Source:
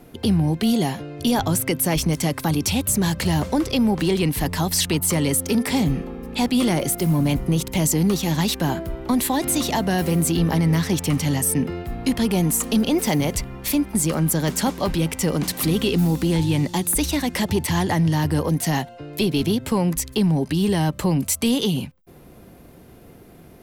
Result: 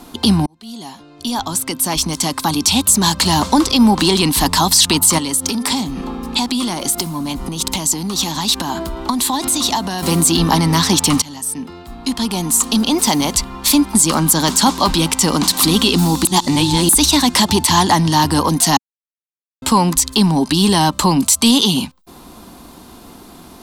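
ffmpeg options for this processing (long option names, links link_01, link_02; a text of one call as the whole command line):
ffmpeg -i in.wav -filter_complex "[0:a]asettb=1/sr,asplit=3[link_01][link_02][link_03];[link_01]atrim=end=5.184[link_04];[link_02]atrim=start=5.18:end=10.03,asetpts=PTS-STARTPTS,afade=type=in:duration=0.004:curve=qsin,afade=type=out:start_time=4.846:duration=0.004:curve=qsin,acompressor=threshold=-25dB:ratio=10:attack=3.2:release=140:knee=1:detection=peak[link_05];[link_03]atrim=start=10.026[link_06];[link_04][link_05]acrossfade=duration=0.004:curve1=hsin:curve2=qsin[link_07];[link_07][link_06]acrossfade=duration=0.004:curve1=qsin:curve2=hsin,asplit=7[link_08][link_09][link_10][link_11][link_12][link_13][link_14];[link_08]atrim=end=0.46,asetpts=PTS-STARTPTS,afade=type=out:start_time=0.456:duration=0.004:curve=hsin[link_15];[link_09]atrim=start=0.46:end=11.22,asetpts=PTS-STARTPTS,afade=type=in:duration=3.23,afade=type=out:start_time=10.756:duration=0.004:curve=hsin:silence=0.1[link_16];[link_10]atrim=start=11.22:end=16.252,asetpts=PTS-STARTPTS,afade=type=in:duration=2.97:silence=0.1[link_17];[link_11]atrim=start=16.248:end=16.892,asetpts=PTS-STARTPTS,areverse[link_18];[link_12]atrim=start=16.888:end=18.77,asetpts=PTS-STARTPTS,afade=type=out:start_time=1.878:duration=0.004:curve=hsin[link_19];[link_13]atrim=start=18.77:end=19.62,asetpts=PTS-STARTPTS,volume=0[link_20];[link_14]atrim=start=19.62,asetpts=PTS-STARTPTS,afade=type=in:duration=0.004:curve=hsin[link_21];[link_15][link_16][link_17]concat=n=3:v=0:a=1[link_22];[link_22][link_18]acrossfade=duration=0.004:curve1=hsin:curve2=hsin[link_23];[link_19][link_20][link_21]concat=n=3:v=0:a=1[link_24];[link_23][link_24]acrossfade=duration=0.004:curve1=hsin:curve2=hsin,equalizer=frequency=125:width_type=o:width=1:gain=-10,equalizer=frequency=250:width_type=o:width=1:gain=6,equalizer=frequency=500:width_type=o:width=1:gain=-8,equalizer=frequency=1000:width_type=o:width=1:gain=12,equalizer=frequency=2000:width_type=o:width=1:gain=-5,equalizer=frequency=4000:width_type=o:width=1:gain=10,equalizer=frequency=8000:width_type=o:width=1:gain=8,alimiter=level_in=7.5dB:limit=-1dB:release=50:level=0:latency=1,volume=-1dB" out.wav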